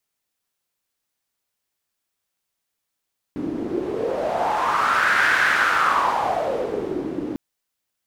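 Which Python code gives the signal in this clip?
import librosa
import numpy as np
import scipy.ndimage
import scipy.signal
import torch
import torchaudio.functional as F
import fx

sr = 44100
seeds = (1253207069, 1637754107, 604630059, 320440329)

y = fx.wind(sr, seeds[0], length_s=4.0, low_hz=300.0, high_hz=1600.0, q=5.1, gusts=1, swing_db=10.0)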